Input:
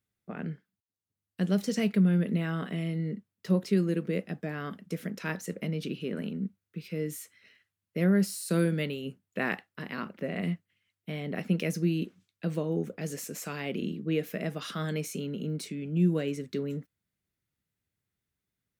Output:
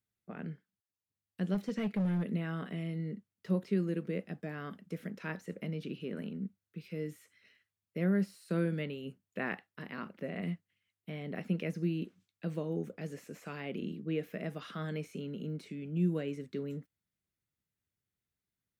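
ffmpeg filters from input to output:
-filter_complex "[0:a]asettb=1/sr,asplit=3[a][b][c];[a]atrim=end=1.544[d];[b]atrim=start=1.54:end=2.32,asetpts=PTS-STARTPTS,afade=t=in:d=0.004:c=qsin,afade=t=out:st=0.776:d=0.004:c=qsin,asoftclip=type=hard:threshold=-22.5dB[e];[c]atrim=start=2.316[f];[d][e]acrossfade=d=0.004:c1=hsin:c2=qsin[g];[g][f]acrossfade=d=0.004:c1=qsin:c2=hsin,acrossover=split=3200[h][i];[i]acompressor=threshold=-55dB:ratio=4:attack=1:release=60[j];[h][j]amix=inputs=2:normalize=0,volume=-5.5dB"

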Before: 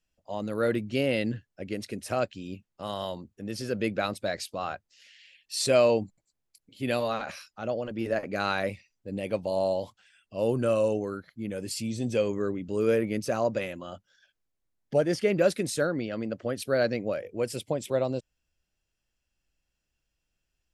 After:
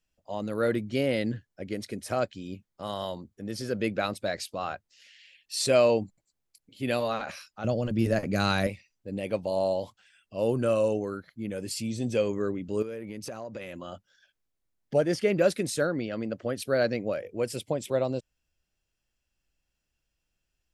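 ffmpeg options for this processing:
-filter_complex "[0:a]asettb=1/sr,asplit=3[a][b][c];[a]atrim=end=0.704[d];[b]atrim=start=0.7:end=3.82,asetpts=PTS-STARTPTS,afade=t=in:d=0.004:c=qsin,afade=t=out:st=3.116:d=0.004:c=qsin,bandreject=f=2.7k:w=9.3[e];[c]atrim=start=3.816[f];[d][e]acrossfade=d=0.004:c1=hsin:c2=qsin[g];[g][f]acrossfade=d=0.004:c1=qsin:c2=hsin,asettb=1/sr,asplit=3[h][i][j];[h]atrim=end=7.644[k];[i]atrim=start=7.64:end=8.67,asetpts=PTS-STARTPTS,afade=t=in:d=0.004:c=qsin,afade=t=out:st=1.026:d=0.004:c=qsin,bass=f=250:g=13,treble=f=4k:g=10[l];[j]atrim=start=8.666[m];[k][l]acrossfade=d=0.004:c1=hsin:c2=qsin[n];[n][m]acrossfade=d=0.004:c1=qsin:c2=hsin,asettb=1/sr,asplit=3[o][p][q];[o]atrim=end=12.824[r];[p]atrim=start=12.82:end=13.78,asetpts=PTS-STARTPTS,afade=t=in:d=0.004:c=qsin,afade=t=out:st=0.956:d=0.004:c=qsin,acompressor=threshold=-34dB:ratio=8:attack=3.2:release=140:knee=1:detection=peak[s];[q]atrim=start=13.776[t];[r][s]acrossfade=d=0.004:c1=hsin:c2=qsin[u];[u][t]acrossfade=d=0.004:c1=qsin:c2=hsin"

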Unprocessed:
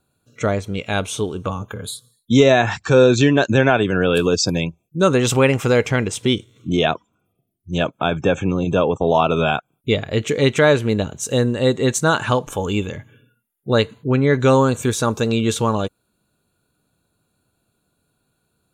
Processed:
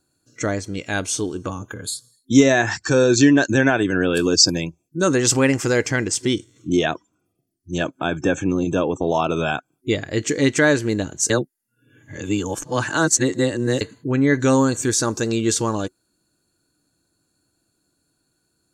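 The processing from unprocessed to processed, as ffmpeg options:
-filter_complex "[0:a]asplit=3[a][b][c];[a]atrim=end=11.302[d];[b]atrim=start=11.298:end=13.812,asetpts=PTS-STARTPTS,areverse[e];[c]atrim=start=13.808[f];[d][e]acrossfade=d=0.004:c1=hsin:c2=hsin[g];[g][f]acrossfade=d=0.004:c1=hsin:c2=hsin,superequalizer=6b=2.51:11b=2:14b=3.98:15b=3.55:16b=2,volume=-4.5dB"

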